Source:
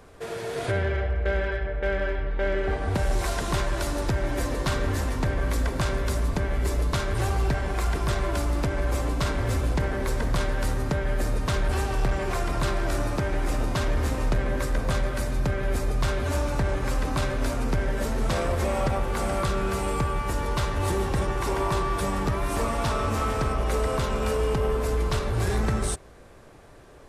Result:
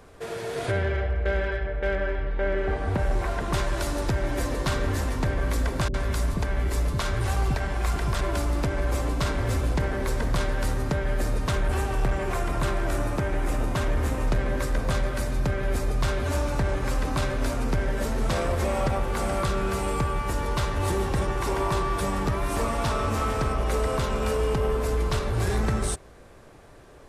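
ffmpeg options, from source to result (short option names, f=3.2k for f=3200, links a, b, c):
-filter_complex "[0:a]asettb=1/sr,asplit=3[a][b][c];[a]atrim=end=1.954[d];[b]atrim=start=1.95:end=3.53,asetpts=PTS-STARTPTS,afade=t=in:d=0.004:c=qsin,afade=t=out:st=1.576:d=0.004:c=qsin,acrossover=split=2600[e][f];[f]acompressor=threshold=-50dB:ratio=4:attack=1:release=60[g];[e][g]amix=inputs=2:normalize=0[h];[c]atrim=start=3.526[i];[d][h]acrossfade=d=0.004:c1=hsin:c2=qsin[j];[j][i]acrossfade=d=0.004:c1=qsin:c2=hsin,asettb=1/sr,asplit=3[k][l][m];[k]atrim=end=5.884[n];[l]atrim=start=5.88:end=8.21,asetpts=PTS-STARTPTS,afade=t=in:d=0.004:c=qsin,afade=t=out:st=2.326:d=0.004:c=qsin,acrossover=split=420[o][p];[p]adelay=60[q];[o][q]amix=inputs=2:normalize=0,atrim=end_sample=102753[r];[m]atrim=start=8.206[s];[n][r]acrossfade=d=0.004:c1=hsin:c2=qsin[t];[t][s]acrossfade=d=0.004:c1=qsin:c2=hsin,asettb=1/sr,asplit=3[u][v][w];[u]atrim=end=11.514[x];[v]atrim=start=11.51:end=14.28,asetpts=PTS-STARTPTS,afade=t=in:d=0.004:c=qsin,afade=t=out:st=2.766:d=0.004:c=qsin,equalizer=f=4.7k:w=1.5:g=-5[y];[w]atrim=start=14.276[z];[x][y]acrossfade=d=0.004:c1=hsin:c2=qsin[aa];[aa][z]acrossfade=d=0.004:c1=qsin:c2=hsin"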